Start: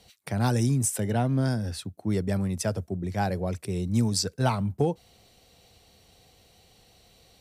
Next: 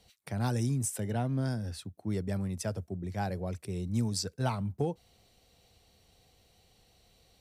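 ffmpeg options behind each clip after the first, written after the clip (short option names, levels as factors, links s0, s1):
-af "lowshelf=f=62:g=6,volume=0.447"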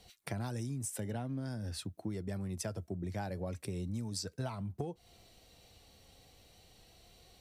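-af "flanger=delay=2.7:depth=1:regen=74:speed=0.41:shape=triangular,acompressor=threshold=0.00708:ratio=10,volume=2.51"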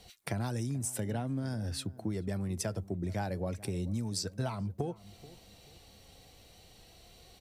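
-filter_complex "[0:a]asplit=2[s0][s1];[s1]adelay=433,lowpass=f=900:p=1,volume=0.126,asplit=2[s2][s3];[s3]adelay=433,lowpass=f=900:p=1,volume=0.35,asplit=2[s4][s5];[s5]adelay=433,lowpass=f=900:p=1,volume=0.35[s6];[s0][s2][s4][s6]amix=inputs=4:normalize=0,volume=1.58"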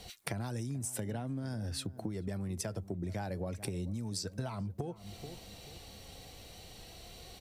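-af "acompressor=threshold=0.00891:ratio=6,volume=2"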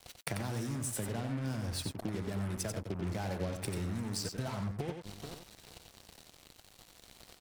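-filter_complex "[0:a]acrusher=bits=6:mix=0:aa=0.5,asplit=2[s0][s1];[s1]aecho=0:1:91:0.501[s2];[s0][s2]amix=inputs=2:normalize=0"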